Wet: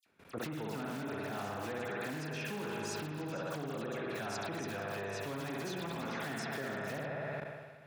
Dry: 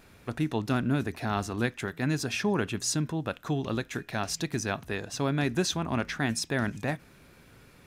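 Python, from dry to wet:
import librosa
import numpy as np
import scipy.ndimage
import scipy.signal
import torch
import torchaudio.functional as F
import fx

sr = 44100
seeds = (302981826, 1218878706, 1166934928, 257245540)

p1 = fx.high_shelf(x, sr, hz=4300.0, db=-8.5)
p2 = fx.hum_notches(p1, sr, base_hz=60, count=6)
p3 = p2 + fx.echo_stepped(p2, sr, ms=116, hz=270.0, octaves=1.4, feedback_pct=70, wet_db=-6.0, dry=0)
p4 = fx.dynamic_eq(p3, sr, hz=490.0, q=7.3, threshold_db=-50.0, ratio=4.0, max_db=6)
p5 = fx.rev_spring(p4, sr, rt60_s=2.4, pass_ms=(59,), chirp_ms=55, drr_db=-2.0)
p6 = (np.mod(10.0 ** (20.5 / 20.0) * p5 + 1.0, 2.0) - 1.0) / 10.0 ** (20.5 / 20.0)
p7 = p5 + (p6 * 10.0 ** (-8.0 / 20.0))
p8 = fx.dispersion(p7, sr, late='lows', ms=63.0, hz=2900.0)
p9 = fx.level_steps(p8, sr, step_db=17)
p10 = scipy.signal.sosfilt(scipy.signal.bessel(2, 170.0, 'highpass', norm='mag', fs=sr, output='sos'), p9)
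p11 = fx.sustainer(p10, sr, db_per_s=41.0)
y = p11 * 10.0 ** (-4.0 / 20.0)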